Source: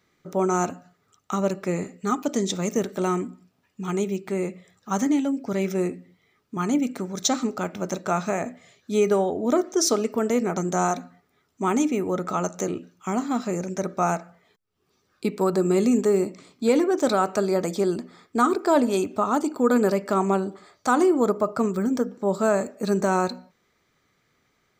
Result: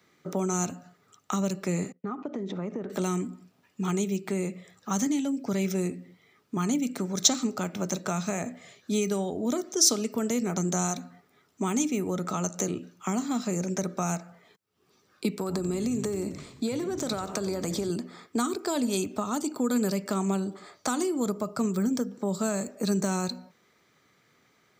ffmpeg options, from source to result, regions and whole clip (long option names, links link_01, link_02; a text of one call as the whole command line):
ffmpeg -i in.wav -filter_complex "[0:a]asettb=1/sr,asplit=3[link_01][link_02][link_03];[link_01]atrim=end=1.924[link_04];[link_02]atrim=start=1.92:end=2.9,asetpts=PTS-STARTPTS,afade=type=in:duration=0.004:curve=qsin,afade=type=out:start_time=0.976:duration=0.004:curve=qsin,agate=range=-33dB:threshold=-35dB:ratio=3:release=100:detection=peak,lowpass=1600,acompressor=threshold=-33dB:ratio=5:attack=3.2:release=140:knee=1:detection=peak[link_05];[link_03]atrim=start=2.896[link_06];[link_04][link_05]acrossfade=duration=0.004:curve1=hsin:curve2=qsin[link_07];[link_07][link_06]acrossfade=duration=0.004:curve1=qsin:curve2=hsin,asettb=1/sr,asplit=3[link_08][link_09][link_10];[link_08]atrim=end=15.304[link_11];[link_09]atrim=start=15.3:end=17.9,asetpts=PTS-STARTPTS,afade=type=in:duration=0.004:curve=qsin,afade=type=out:start_time=2.596:duration=0.004:curve=qsin,acompressor=threshold=-24dB:ratio=6:attack=3.2:release=140:knee=1:detection=peak,asplit=7[link_12][link_13][link_14][link_15][link_16][link_17][link_18];[link_13]adelay=90,afreqshift=-110,volume=-15dB[link_19];[link_14]adelay=180,afreqshift=-220,volume=-19.4dB[link_20];[link_15]adelay=270,afreqshift=-330,volume=-23.9dB[link_21];[link_16]adelay=360,afreqshift=-440,volume=-28.3dB[link_22];[link_17]adelay=450,afreqshift=-550,volume=-32.7dB[link_23];[link_18]adelay=540,afreqshift=-660,volume=-37.2dB[link_24];[link_12][link_19][link_20][link_21][link_22][link_23][link_24]amix=inputs=7:normalize=0,atrim=end_sample=114660[link_25];[link_10]atrim=start=17.896[link_26];[link_11][link_25]acrossfade=duration=0.004:curve1=hsin:curve2=qsin[link_27];[link_27][link_26]acrossfade=duration=0.004:curve1=qsin:curve2=hsin,highpass=110,acrossover=split=190|3000[link_28][link_29][link_30];[link_29]acompressor=threshold=-34dB:ratio=6[link_31];[link_28][link_31][link_30]amix=inputs=3:normalize=0,volume=3.5dB" out.wav